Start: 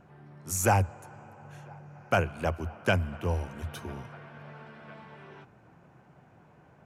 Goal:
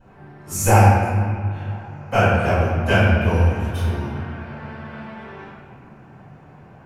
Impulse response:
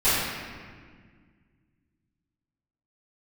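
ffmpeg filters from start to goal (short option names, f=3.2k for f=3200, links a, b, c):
-filter_complex "[0:a]asettb=1/sr,asplit=3[a][b][c];[a]atrim=end=1.064[d];[b]atrim=start=1.06:end=1.66,asetpts=PTS-STARTPTS,afade=t=in:d=0.004:c=qsin,afade=t=out:st=0.596:d=0.004:c=qsin,highshelf=f=4.9k:t=q:w=1.5:g=-12[e];[c]atrim=start=1.656[f];[d][e]acrossfade=d=0.004:c1=hsin:c2=qsin[g];[g][f]acrossfade=d=0.004:c1=qsin:c2=hsin[h];[1:a]atrim=start_sample=2205[i];[h][i]afir=irnorm=-1:irlink=0,volume=-6.5dB"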